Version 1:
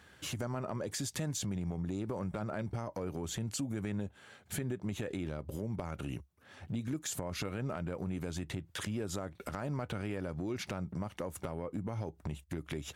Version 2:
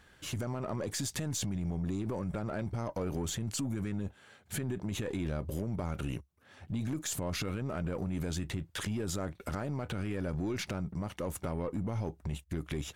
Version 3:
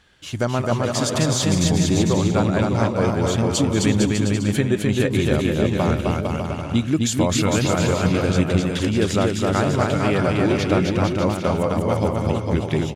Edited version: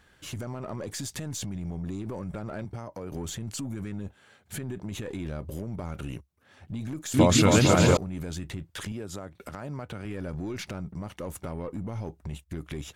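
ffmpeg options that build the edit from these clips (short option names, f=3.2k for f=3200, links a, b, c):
-filter_complex "[0:a]asplit=2[a][b];[1:a]asplit=4[c][d][e][f];[c]atrim=end=2.652[g];[a]atrim=start=2.648:end=3.122[h];[d]atrim=start=3.118:end=7.142[i];[2:a]atrim=start=7.138:end=7.972[j];[e]atrim=start=7.968:end=8.922[k];[b]atrim=start=8.918:end=10.052[l];[f]atrim=start=10.048[m];[g][h]acrossfade=d=0.004:c1=hsin:c2=hsin[n];[n][i]acrossfade=d=0.004:c1=hsin:c2=hsin[o];[o][j]acrossfade=d=0.004:c1=hsin:c2=hsin[p];[p][k]acrossfade=d=0.004:c1=hsin:c2=hsin[q];[q][l]acrossfade=d=0.004:c1=hsin:c2=hsin[r];[r][m]acrossfade=d=0.004:c1=hsin:c2=hsin"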